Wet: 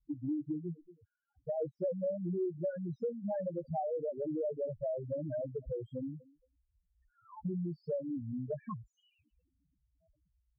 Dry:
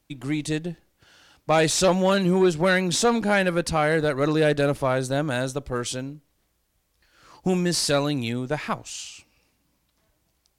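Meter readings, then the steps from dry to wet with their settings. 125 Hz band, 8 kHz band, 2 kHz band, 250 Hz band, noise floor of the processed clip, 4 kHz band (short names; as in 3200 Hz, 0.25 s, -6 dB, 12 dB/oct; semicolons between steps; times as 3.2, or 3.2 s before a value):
-14.5 dB, under -40 dB, under -35 dB, -13.5 dB, -81 dBFS, under -40 dB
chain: on a send: thinning echo 0.23 s, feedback 26%, high-pass 420 Hz, level -23 dB; on the sum: loudest bins only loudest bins 2; dynamic EQ 230 Hz, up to -7 dB, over -48 dBFS, Q 7; low-pass sweep 330 Hz -> 900 Hz, 0.78–3.23; compressor 4:1, threshold -36 dBFS, peak gain reduction 19 dB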